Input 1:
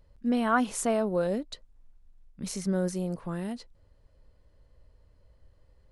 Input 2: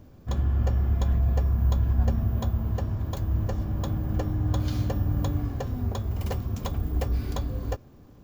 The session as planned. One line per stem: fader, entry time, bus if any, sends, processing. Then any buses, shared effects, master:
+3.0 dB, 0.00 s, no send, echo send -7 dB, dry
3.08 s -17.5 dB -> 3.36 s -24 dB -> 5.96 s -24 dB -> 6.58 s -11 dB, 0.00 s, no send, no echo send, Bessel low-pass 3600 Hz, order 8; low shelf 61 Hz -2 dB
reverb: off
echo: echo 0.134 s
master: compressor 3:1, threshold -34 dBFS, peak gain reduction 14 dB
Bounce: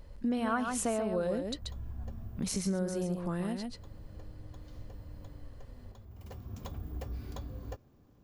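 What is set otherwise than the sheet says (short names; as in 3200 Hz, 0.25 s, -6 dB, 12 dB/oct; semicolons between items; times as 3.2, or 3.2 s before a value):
stem 1 +3.0 dB -> +9.5 dB; stem 2: missing Bessel low-pass 3600 Hz, order 8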